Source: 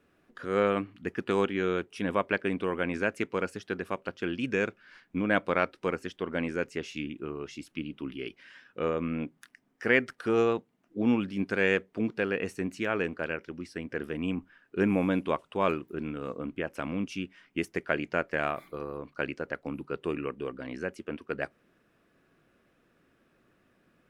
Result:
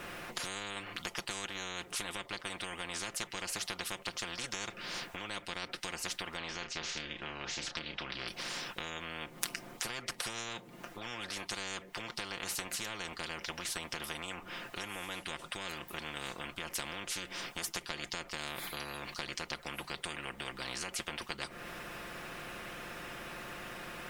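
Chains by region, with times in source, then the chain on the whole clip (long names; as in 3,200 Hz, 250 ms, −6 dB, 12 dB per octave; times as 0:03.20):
0:06.37–0:08.28: low-pass filter 5,200 Hz 24 dB per octave + double-tracking delay 31 ms −11.5 dB
whole clip: downward compressor 6 to 1, threshold −39 dBFS; comb filter 5.7 ms; every bin compressed towards the loudest bin 10 to 1; level +13 dB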